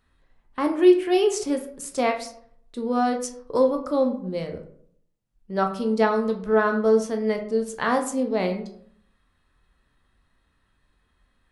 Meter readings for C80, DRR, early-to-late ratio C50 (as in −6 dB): 13.5 dB, 4.0 dB, 10.0 dB